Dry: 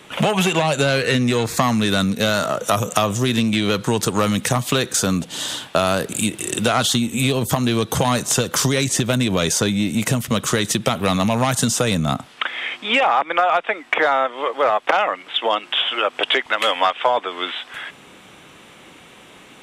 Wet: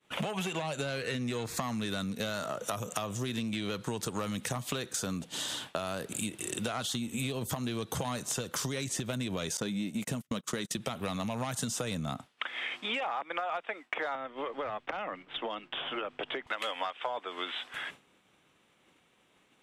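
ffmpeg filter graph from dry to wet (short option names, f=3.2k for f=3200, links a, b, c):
-filter_complex "[0:a]asettb=1/sr,asplit=3[a][b][c];[a]atrim=end=9.574[d];[b]atrim=start=9.57:end=10.77,asetpts=PTS-STARTPTS,afade=t=in:d=0.004:c=qsin,afade=t=out:st=1.196:d=0.004:c=qsin,lowshelf=f=110:t=q:w=1.5:g=-11.5,agate=range=-32dB:threshold=-23dB:ratio=16:release=100:detection=peak[e];[c]atrim=start=10.766[f];[d][e]acrossfade=d=0.004:c1=hsin:c2=qsin[g];[g][f]acrossfade=d=0.004:c1=qsin:c2=hsin,asettb=1/sr,asplit=3[h][i][j];[h]atrim=end=14.154[k];[i]atrim=start=14.15:end=16.47,asetpts=PTS-STARTPTS,afade=t=in:d=0.004:c=qsin,afade=t=out:st=2.316:d=0.004:c=qsin,aemphasis=mode=reproduction:type=riaa,acrossover=split=300|1600[l][m][n];[l]acompressor=threshold=-37dB:ratio=4[o];[m]acompressor=threshold=-27dB:ratio=4[p];[n]acompressor=threshold=-29dB:ratio=4[q];[o][p][q]amix=inputs=3:normalize=0[r];[j]atrim=start=16.466[s];[k][r]acrossfade=d=0.004:c1=hsin:c2=qsin[t];[t][s]acrossfade=d=0.004:c1=qsin:c2=hsin,acompressor=threshold=-27dB:ratio=4,agate=range=-33dB:threshold=-33dB:ratio=3:detection=peak,volume=-6dB"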